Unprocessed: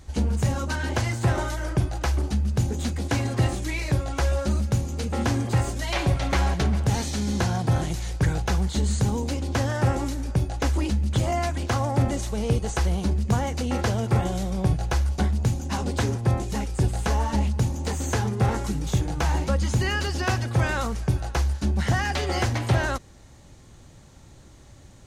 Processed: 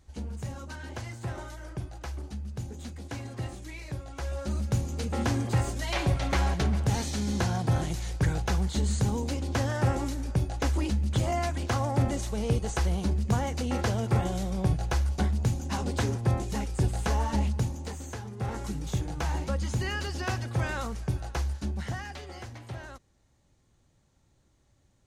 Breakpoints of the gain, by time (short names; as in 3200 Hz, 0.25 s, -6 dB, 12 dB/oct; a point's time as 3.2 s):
4.12 s -13 dB
4.76 s -3.5 dB
17.52 s -3.5 dB
18.24 s -15 dB
18.65 s -6.5 dB
21.56 s -6.5 dB
22.38 s -18 dB